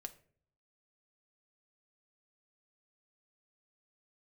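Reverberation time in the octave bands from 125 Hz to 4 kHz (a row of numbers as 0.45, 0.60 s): 0.85, 0.70, 0.60, 0.40, 0.40, 0.30 s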